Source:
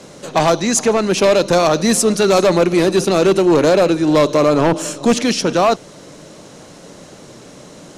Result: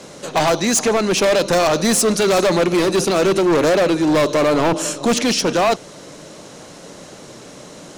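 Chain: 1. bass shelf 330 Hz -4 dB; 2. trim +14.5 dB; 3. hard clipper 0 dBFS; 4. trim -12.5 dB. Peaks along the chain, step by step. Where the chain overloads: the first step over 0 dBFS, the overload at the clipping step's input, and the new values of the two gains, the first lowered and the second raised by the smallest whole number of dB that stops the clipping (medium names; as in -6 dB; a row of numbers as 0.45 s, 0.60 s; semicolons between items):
-6.0 dBFS, +8.5 dBFS, 0.0 dBFS, -12.5 dBFS; step 2, 8.5 dB; step 2 +5.5 dB, step 4 -3.5 dB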